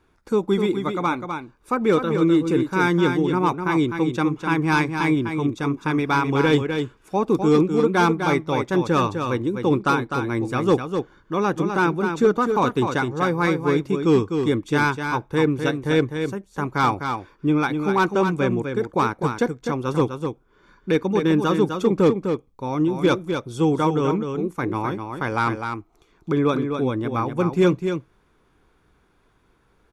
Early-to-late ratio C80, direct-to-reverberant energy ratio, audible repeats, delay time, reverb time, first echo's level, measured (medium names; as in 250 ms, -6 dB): no reverb, no reverb, 1, 253 ms, no reverb, -6.5 dB